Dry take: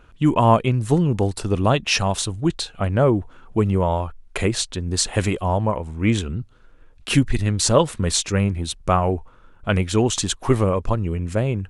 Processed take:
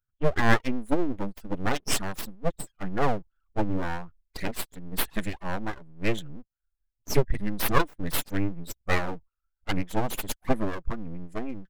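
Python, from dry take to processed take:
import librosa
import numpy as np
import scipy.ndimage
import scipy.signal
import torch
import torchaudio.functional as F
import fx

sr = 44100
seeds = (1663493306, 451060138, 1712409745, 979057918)

y = fx.bin_expand(x, sr, power=2.0)
y = np.abs(y)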